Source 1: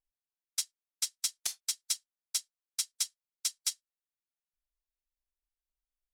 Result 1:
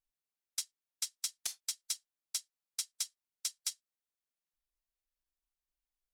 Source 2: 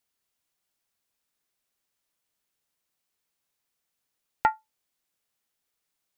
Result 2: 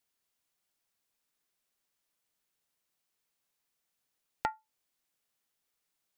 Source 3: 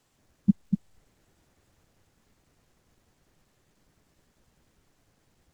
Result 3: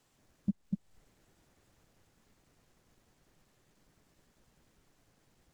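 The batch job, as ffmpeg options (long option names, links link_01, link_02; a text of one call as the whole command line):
ffmpeg -i in.wav -af "equalizer=frequency=77:width_type=o:width=0.53:gain=-4.5,acompressor=threshold=-32dB:ratio=2.5,volume=-1.5dB" out.wav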